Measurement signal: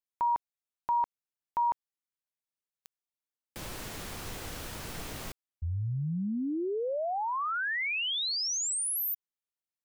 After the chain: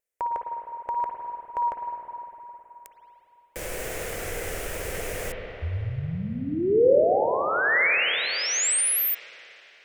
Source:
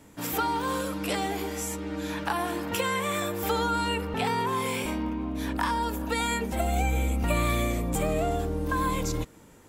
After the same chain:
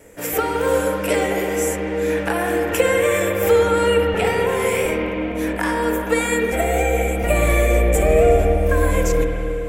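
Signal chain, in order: vibrato 2.1 Hz 20 cents; ten-band graphic EQ 125 Hz -6 dB, 250 Hz -10 dB, 500 Hz +11 dB, 1 kHz -10 dB, 2 kHz +6 dB, 4 kHz -10 dB, 8 kHz +3 dB; spring tank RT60 3.6 s, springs 51/55 ms, chirp 60 ms, DRR 1.5 dB; trim +7 dB

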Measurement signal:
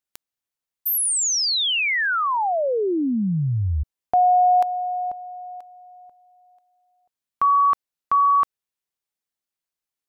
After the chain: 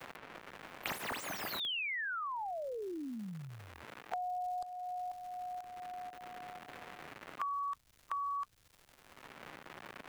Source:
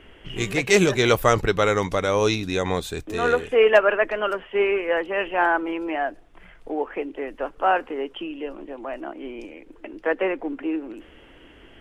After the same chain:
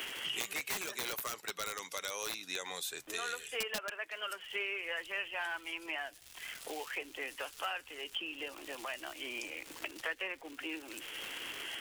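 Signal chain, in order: coarse spectral quantiser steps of 15 dB; high-pass 150 Hz 12 dB/octave; differentiator; crackle 310 per s -54 dBFS; integer overflow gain 24 dB; three bands compressed up and down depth 100%; trim -1 dB

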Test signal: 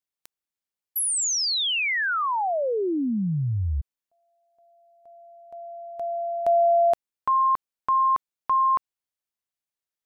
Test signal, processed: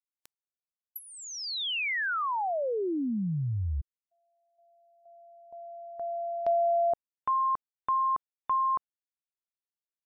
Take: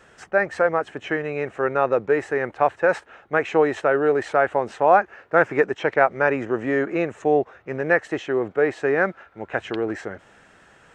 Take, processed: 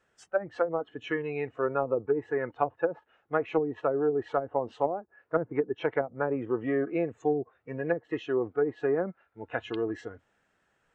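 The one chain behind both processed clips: spectral noise reduction 15 dB; low-pass that closes with the level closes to 310 Hz, closed at -14 dBFS; trim -5 dB

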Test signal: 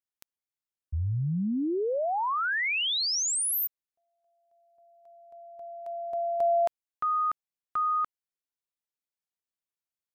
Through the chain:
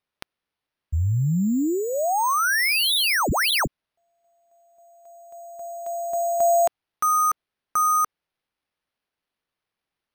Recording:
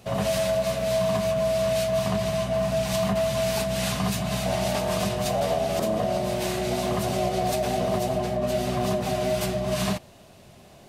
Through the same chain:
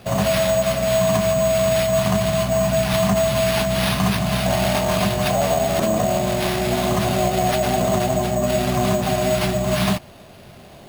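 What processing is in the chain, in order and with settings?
sample-and-hold 6×; dynamic bell 470 Hz, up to -6 dB, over -43 dBFS, Q 2.7; trim +7 dB

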